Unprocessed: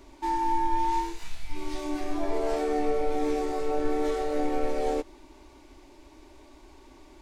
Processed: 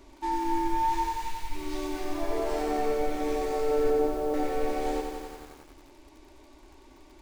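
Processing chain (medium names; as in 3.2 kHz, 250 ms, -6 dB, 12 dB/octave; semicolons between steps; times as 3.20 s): 3.90–4.34 s: low-pass 1 kHz 24 dB/octave; bit-crushed delay 90 ms, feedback 80%, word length 8-bit, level -5 dB; trim -1.5 dB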